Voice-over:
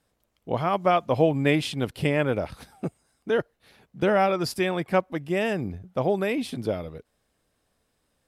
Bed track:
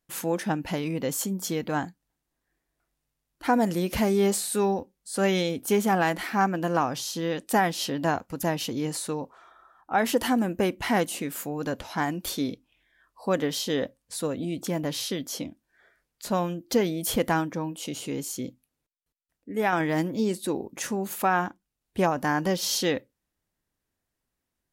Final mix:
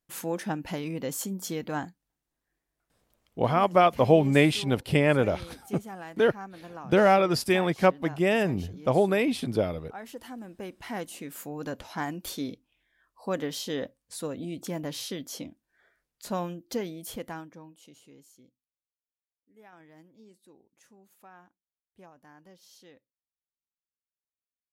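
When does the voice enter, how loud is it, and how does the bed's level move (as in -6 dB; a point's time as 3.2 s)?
2.90 s, +1.5 dB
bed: 3.01 s -4 dB
3.38 s -18 dB
10.3 s -18 dB
11.54 s -5 dB
16.44 s -5 dB
18.76 s -29 dB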